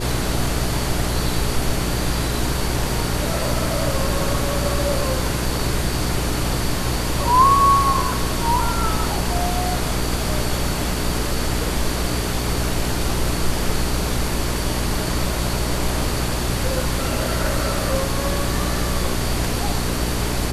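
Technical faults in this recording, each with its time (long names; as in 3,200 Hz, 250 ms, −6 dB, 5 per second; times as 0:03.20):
mains hum 60 Hz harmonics 7 −25 dBFS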